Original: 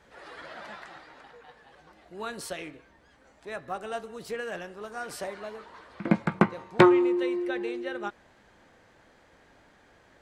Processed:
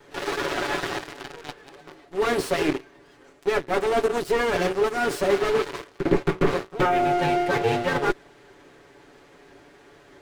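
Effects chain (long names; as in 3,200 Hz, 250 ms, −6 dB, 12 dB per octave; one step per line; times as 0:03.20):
lower of the sound and its delayed copy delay 7 ms
in parallel at −5 dB: gain into a clipping stage and back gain 19.5 dB
on the sum: leveller curve on the samples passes 3
reversed playback
downward compressor 8 to 1, threshold −31 dBFS, peak gain reduction 21.5 dB
reversed playback
parametric band 370 Hz +14.5 dB 0.38 octaves
slew-rate limiting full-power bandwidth 55 Hz
level +9 dB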